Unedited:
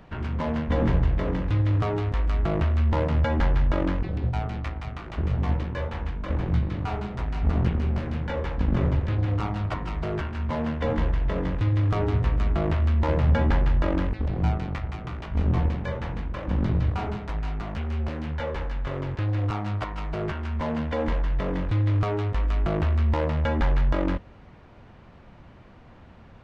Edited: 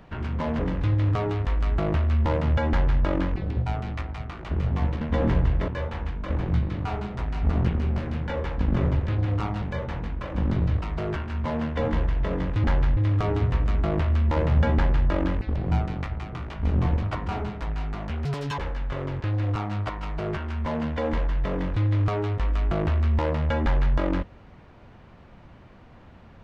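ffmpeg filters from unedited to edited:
-filter_complex "[0:a]asplit=12[a][b][c][d][e][f][g][h][i][j][k][l];[a]atrim=end=0.592[m];[b]atrim=start=1.258:end=5.682[n];[c]atrim=start=0.588:end=1.262[o];[d]atrim=start=5.678:end=9.622[p];[e]atrim=start=15.748:end=16.952[q];[f]atrim=start=9.868:end=11.692[r];[g]atrim=start=3.368:end=3.702[s];[h]atrim=start=11.688:end=15.752[t];[i]atrim=start=9.618:end=9.872[u];[j]atrim=start=16.948:end=17.924[v];[k]atrim=start=17.92:end=18.53,asetpts=PTS-STARTPTS,asetrate=81144,aresample=44100,atrim=end_sample=14620,asetpts=PTS-STARTPTS[w];[l]atrim=start=18.526[x];[m][n]acrossfade=d=0.004:c1=hsin:c2=hsin[y];[y][o]acrossfade=d=0.004:c1=hsin:c2=hsin[z];[z][p]acrossfade=d=0.004:c1=hsin:c2=hsin[aa];[aa][q]acrossfade=d=0.004:c1=hsin:c2=hsin[ab];[ab][r]acrossfade=d=0.004:c1=hsin:c2=hsin[ac];[ac][s]acrossfade=d=0.004:c1=hsin:c2=hsin[ad];[ad][t]acrossfade=d=0.004:c1=hsin:c2=hsin[ae];[ae][u]acrossfade=d=0.004:c1=hsin:c2=hsin[af];[af][v]acrossfade=d=0.004:c1=hsin:c2=hsin[ag];[ag][w]acrossfade=d=0.004:c1=hsin:c2=hsin[ah];[ah][x]acrossfade=d=0.004:c1=hsin:c2=hsin"

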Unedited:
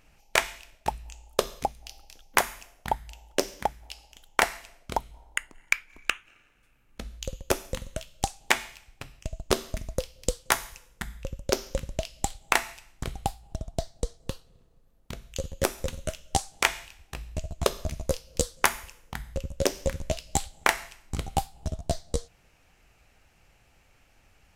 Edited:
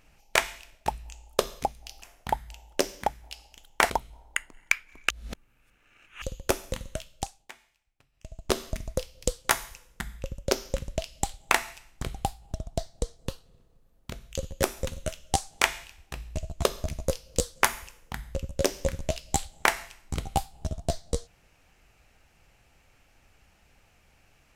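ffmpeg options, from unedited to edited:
-filter_complex "[0:a]asplit=7[a][b][c][d][e][f][g];[a]atrim=end=2.022[h];[b]atrim=start=2.608:end=4.492[i];[c]atrim=start=4.908:end=6.112[j];[d]atrim=start=6.108:end=7.232,asetpts=PTS-STARTPTS,areverse[k];[e]atrim=start=7.228:end=8.5,asetpts=PTS-STARTPTS,afade=t=out:st=0.782:d=0.49:silence=0.0668344[l];[f]atrim=start=8.5:end=9.13,asetpts=PTS-STARTPTS,volume=-23.5dB[m];[g]atrim=start=9.13,asetpts=PTS-STARTPTS,afade=t=in:d=0.49:silence=0.0668344[n];[h][i]acrossfade=d=0.004:c1=hsin:c2=hsin[o];[o][j]acrossfade=d=0.004:c1=hsin:c2=hsin[p];[p][k]acrossfade=d=0.004:c1=hsin:c2=hsin[q];[l][m][n]concat=n=3:v=0:a=1[r];[q][r]acrossfade=d=0.004:c1=hsin:c2=hsin"

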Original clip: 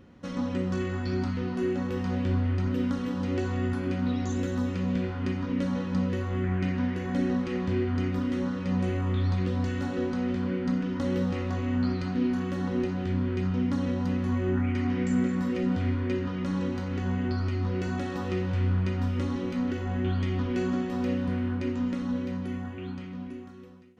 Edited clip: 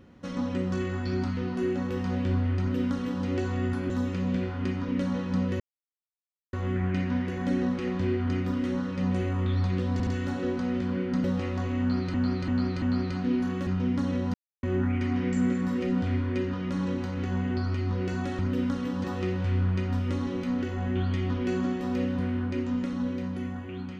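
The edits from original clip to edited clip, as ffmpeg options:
-filter_complex "[0:a]asplit=14[a][b][c][d][e][f][g][h][i][j][k][l][m][n];[a]atrim=end=3.902[o];[b]atrim=start=4.508:end=6.21,asetpts=PTS-STARTPTS,afade=t=out:st=1.698:d=0.004:c=hsin,apad=pad_dur=0.93[p];[c]atrim=start=6.21:end=9.682,asetpts=PTS-STARTPTS,afade=t=in:d=0.004:c=hsin[q];[d]atrim=start=9.608:end=9.682[r];[e]atrim=start=9.608:end=10.782[s];[f]atrim=start=11.168:end=12.072[t];[g]atrim=start=11.728:end=12.072[u];[h]atrim=start=11.728:end=12.072[v];[i]atrim=start=11.728:end=12.582[w];[j]atrim=start=13.408:end=14.08,asetpts=PTS-STARTPTS,afade=t=out:st=0.668:d=0.004:c=hsin[x];[k]atrim=start=14.08:end=14.37,asetpts=PTS-STARTPTS,volume=0[y];[l]atrim=start=14.37:end=18.132,asetpts=PTS-STARTPTS,afade=t=in:d=0.004:c=hsin[z];[m]atrim=start=2.598:end=3.252[aa];[n]atrim=start=18.128[ab];[p][q]concat=n=2:v=0:a=1[ac];[o][ac]acrossfade=d=0.004:c1=hsin:c2=hsin[ad];[ad][r]acrossfade=d=0.004:c1=hsin:c2=hsin[ae];[ae][s]acrossfade=d=0.004:c1=hsin:c2=hsin[af];[af][t]acrossfade=d=0.004:c1=hsin:c2=hsin[ag];[ag][u]acrossfade=d=0.004:c1=hsin:c2=hsin[ah];[ah][v]acrossfade=d=0.004:c1=hsin:c2=hsin[ai];[ai][w]acrossfade=d=0.004:c1=hsin:c2=hsin[aj];[x][y][z]concat=n=3:v=0:a=1[ak];[aj][ak]acrossfade=d=0.004:c1=hsin:c2=hsin[al];[al][aa]acrossfade=d=0.004:c1=hsin:c2=hsin[am];[am][ab]acrossfade=d=0.004:c1=hsin:c2=hsin"

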